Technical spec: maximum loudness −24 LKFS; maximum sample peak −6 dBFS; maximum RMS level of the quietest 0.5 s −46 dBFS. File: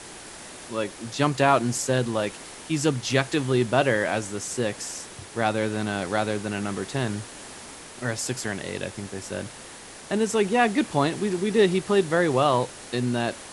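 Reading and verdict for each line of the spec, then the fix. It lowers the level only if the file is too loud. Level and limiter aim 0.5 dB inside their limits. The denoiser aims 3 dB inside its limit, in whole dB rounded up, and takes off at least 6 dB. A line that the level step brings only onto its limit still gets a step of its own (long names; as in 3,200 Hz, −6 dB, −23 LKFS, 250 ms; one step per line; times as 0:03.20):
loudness −25.0 LKFS: in spec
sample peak −5.0 dBFS: out of spec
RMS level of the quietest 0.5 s −43 dBFS: out of spec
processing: broadband denoise 6 dB, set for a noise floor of −43 dBFS
brickwall limiter −6.5 dBFS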